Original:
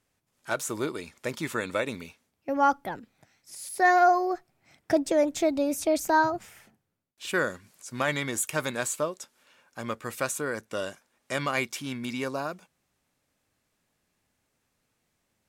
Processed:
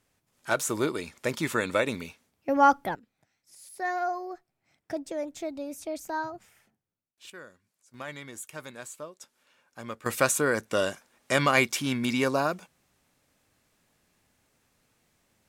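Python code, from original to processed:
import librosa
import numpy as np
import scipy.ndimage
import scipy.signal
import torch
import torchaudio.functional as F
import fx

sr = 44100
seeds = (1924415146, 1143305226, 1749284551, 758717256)

y = fx.gain(x, sr, db=fx.steps((0.0, 3.0), (2.95, -10.0), (7.3, -19.5), (7.94, -12.0), (9.21, -5.0), (10.06, 6.0)))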